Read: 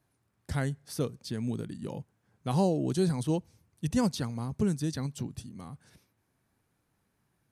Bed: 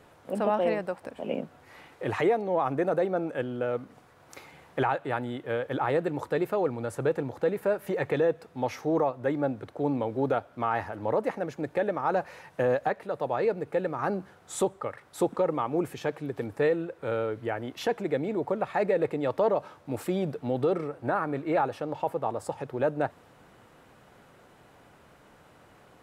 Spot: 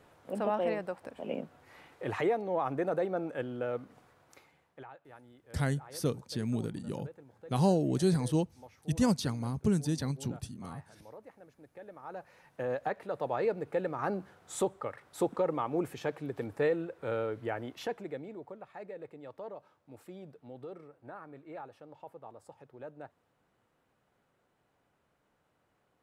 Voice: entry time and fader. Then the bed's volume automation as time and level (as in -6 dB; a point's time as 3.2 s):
5.05 s, 0.0 dB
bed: 4.09 s -5 dB
4.87 s -23.5 dB
11.68 s -23.5 dB
13.02 s -4 dB
17.6 s -4 dB
18.62 s -19 dB